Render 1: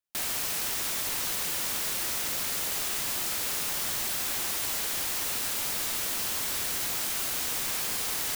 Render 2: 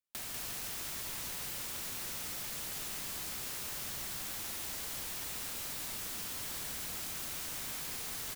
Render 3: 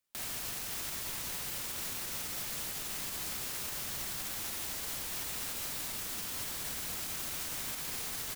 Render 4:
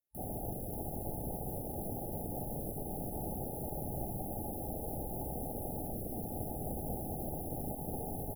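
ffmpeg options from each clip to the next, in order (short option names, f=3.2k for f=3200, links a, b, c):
-filter_complex "[0:a]acrossover=split=220[a][b];[b]acompressor=threshold=-37dB:ratio=2.5[c];[a][c]amix=inputs=2:normalize=0,aecho=1:1:194:0.631,volume=-5dB"
-af "alimiter=level_in=12.5dB:limit=-24dB:level=0:latency=1:release=146,volume=-12.5dB,volume=8dB"
-af "afwtdn=0.00631,afftfilt=real='re*(1-between(b*sr/4096,870,10000))':imag='im*(1-between(b*sr/4096,870,10000))':win_size=4096:overlap=0.75,volume=11dB"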